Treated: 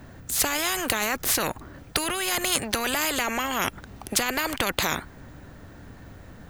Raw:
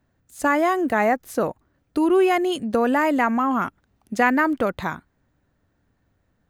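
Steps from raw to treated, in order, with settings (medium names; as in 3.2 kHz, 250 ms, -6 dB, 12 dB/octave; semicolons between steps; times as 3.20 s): loudness maximiser +16.5 dB; spectrum-flattening compressor 4:1; trim -1 dB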